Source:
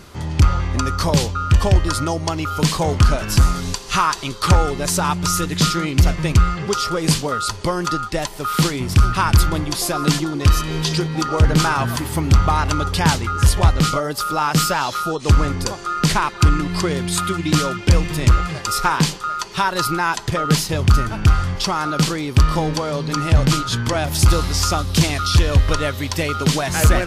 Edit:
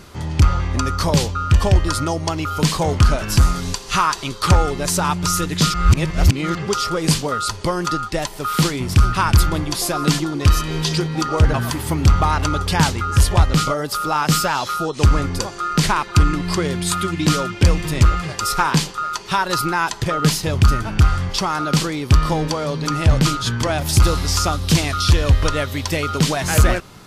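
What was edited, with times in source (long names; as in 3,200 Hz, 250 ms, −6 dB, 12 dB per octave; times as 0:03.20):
0:05.74–0:06.55: reverse
0:11.54–0:11.80: remove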